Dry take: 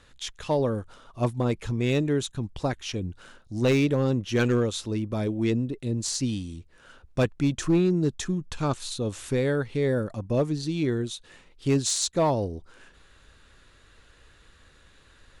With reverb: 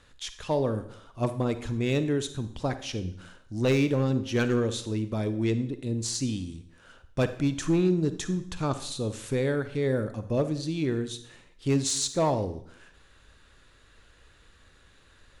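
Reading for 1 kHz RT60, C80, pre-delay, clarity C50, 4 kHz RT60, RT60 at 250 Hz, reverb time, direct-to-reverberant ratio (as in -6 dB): 0.60 s, 16.0 dB, 37 ms, 12.0 dB, 0.60 s, 0.65 s, 0.60 s, 11.0 dB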